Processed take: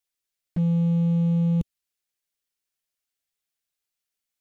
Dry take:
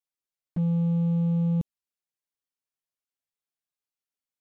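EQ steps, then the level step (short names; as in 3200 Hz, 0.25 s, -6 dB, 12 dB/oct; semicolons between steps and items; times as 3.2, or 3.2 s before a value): ten-band EQ 125 Hz -5 dB, 250 Hz -5 dB, 500 Hz -3 dB, 1000 Hz -7 dB; +8.0 dB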